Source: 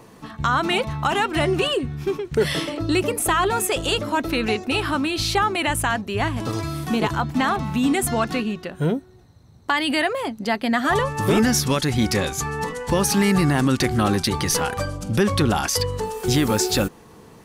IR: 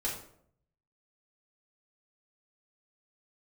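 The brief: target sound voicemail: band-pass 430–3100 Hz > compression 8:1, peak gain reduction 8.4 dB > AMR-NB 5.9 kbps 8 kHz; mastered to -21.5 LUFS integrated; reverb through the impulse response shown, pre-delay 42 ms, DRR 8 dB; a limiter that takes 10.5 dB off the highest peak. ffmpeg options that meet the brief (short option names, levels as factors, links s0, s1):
-filter_complex "[0:a]alimiter=limit=0.1:level=0:latency=1,asplit=2[s0][s1];[1:a]atrim=start_sample=2205,adelay=42[s2];[s1][s2]afir=irnorm=-1:irlink=0,volume=0.251[s3];[s0][s3]amix=inputs=2:normalize=0,highpass=430,lowpass=3100,acompressor=threshold=0.0251:ratio=8,volume=7.08" -ar 8000 -c:a libopencore_amrnb -b:a 5900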